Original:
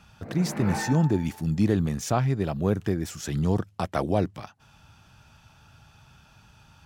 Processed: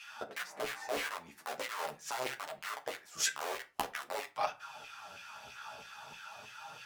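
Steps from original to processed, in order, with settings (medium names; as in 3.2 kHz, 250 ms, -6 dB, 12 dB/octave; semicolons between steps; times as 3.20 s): bass shelf 150 Hz +11.5 dB; integer overflow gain 14 dB; inverted gate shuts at -21 dBFS, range -24 dB; LFO high-pass saw down 3.1 Hz 410–2500 Hz; Chebyshev shaper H 7 -7 dB, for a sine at -6 dBFS; chorus voices 2, 0.44 Hz, delay 11 ms, depth 4.6 ms; on a send: reverberation RT60 0.30 s, pre-delay 4 ms, DRR 7 dB; on the sum: trim +2 dB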